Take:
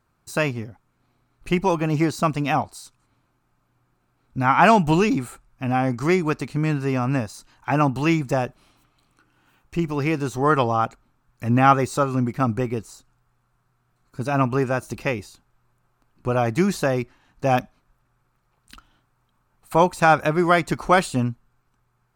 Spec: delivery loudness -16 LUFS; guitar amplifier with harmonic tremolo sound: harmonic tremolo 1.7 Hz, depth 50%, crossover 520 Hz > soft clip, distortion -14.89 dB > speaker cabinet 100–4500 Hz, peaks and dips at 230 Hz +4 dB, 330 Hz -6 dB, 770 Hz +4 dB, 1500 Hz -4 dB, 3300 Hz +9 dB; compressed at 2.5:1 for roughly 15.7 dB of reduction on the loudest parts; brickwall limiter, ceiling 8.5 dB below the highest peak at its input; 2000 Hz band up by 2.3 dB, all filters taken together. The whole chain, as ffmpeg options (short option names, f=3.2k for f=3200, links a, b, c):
-filter_complex "[0:a]equalizer=f=2k:t=o:g=4.5,acompressor=threshold=-34dB:ratio=2.5,alimiter=limit=-24dB:level=0:latency=1,acrossover=split=520[a][b];[a]aeval=exprs='val(0)*(1-0.5/2+0.5/2*cos(2*PI*1.7*n/s))':c=same[c];[b]aeval=exprs='val(0)*(1-0.5/2-0.5/2*cos(2*PI*1.7*n/s))':c=same[d];[c][d]amix=inputs=2:normalize=0,asoftclip=threshold=-30dB,highpass=100,equalizer=f=230:t=q:w=4:g=4,equalizer=f=330:t=q:w=4:g=-6,equalizer=f=770:t=q:w=4:g=4,equalizer=f=1.5k:t=q:w=4:g=-4,equalizer=f=3.3k:t=q:w=4:g=9,lowpass=f=4.5k:w=0.5412,lowpass=f=4.5k:w=1.3066,volume=24dB"